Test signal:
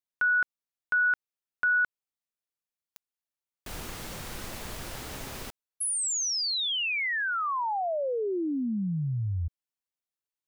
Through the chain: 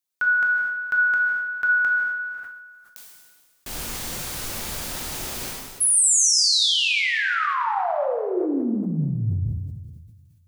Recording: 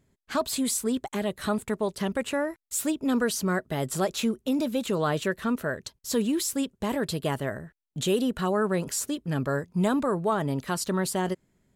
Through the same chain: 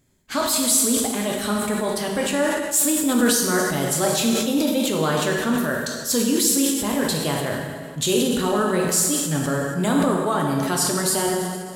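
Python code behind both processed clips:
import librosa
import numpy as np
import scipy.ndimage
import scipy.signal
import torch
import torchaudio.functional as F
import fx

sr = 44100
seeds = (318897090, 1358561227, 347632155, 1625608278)

y = fx.high_shelf(x, sr, hz=3500.0, db=9.0)
y = fx.rev_plate(y, sr, seeds[0], rt60_s=1.7, hf_ratio=0.9, predelay_ms=0, drr_db=-0.5)
y = fx.sustainer(y, sr, db_per_s=36.0)
y = F.gain(torch.from_numpy(y), 1.0).numpy()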